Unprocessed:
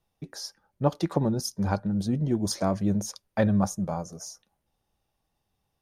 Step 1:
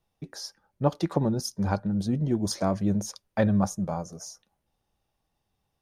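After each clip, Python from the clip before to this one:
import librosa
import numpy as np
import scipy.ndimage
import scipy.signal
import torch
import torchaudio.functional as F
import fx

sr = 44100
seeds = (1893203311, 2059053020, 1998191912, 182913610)

y = fx.high_shelf(x, sr, hz=9700.0, db=-4.0)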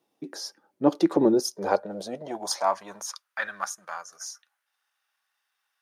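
y = fx.transient(x, sr, attack_db=-6, sustain_db=-2)
y = fx.filter_sweep_highpass(y, sr, from_hz=300.0, to_hz=1500.0, start_s=1.08, end_s=3.46, q=3.1)
y = F.gain(torch.from_numpy(y), 4.0).numpy()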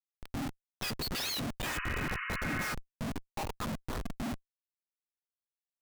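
y = fx.octave_mirror(x, sr, pivot_hz=1200.0)
y = fx.schmitt(y, sr, flips_db=-34.0)
y = fx.spec_repair(y, sr, seeds[0], start_s=1.75, length_s=0.86, low_hz=1000.0, high_hz=3000.0, source='both')
y = F.gain(torch.from_numpy(y), -3.0).numpy()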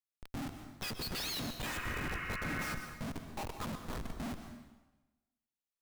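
y = fx.rev_plate(x, sr, seeds[1], rt60_s=1.1, hf_ratio=0.9, predelay_ms=110, drr_db=7.0)
y = F.gain(torch.from_numpy(y), -4.0).numpy()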